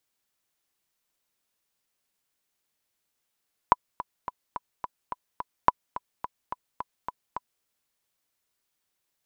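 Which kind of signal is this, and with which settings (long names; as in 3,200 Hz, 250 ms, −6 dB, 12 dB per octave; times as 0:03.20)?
click track 214 BPM, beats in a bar 7, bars 2, 991 Hz, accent 15.5 dB −3 dBFS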